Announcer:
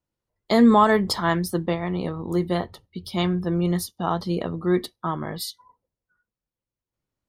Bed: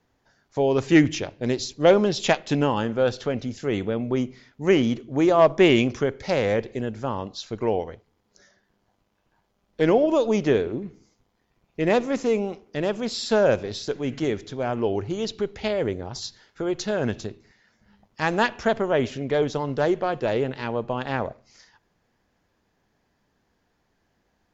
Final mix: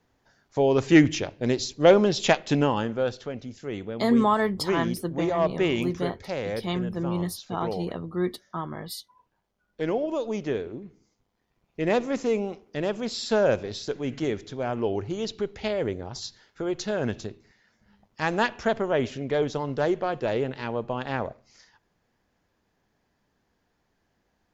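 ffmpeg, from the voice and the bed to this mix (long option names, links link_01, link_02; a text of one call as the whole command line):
ffmpeg -i stem1.wav -i stem2.wav -filter_complex "[0:a]adelay=3500,volume=-5.5dB[link_01];[1:a]volume=5.5dB,afade=type=out:start_time=2.56:duration=0.7:silence=0.398107,afade=type=in:start_time=10.9:duration=1.16:silence=0.530884[link_02];[link_01][link_02]amix=inputs=2:normalize=0" out.wav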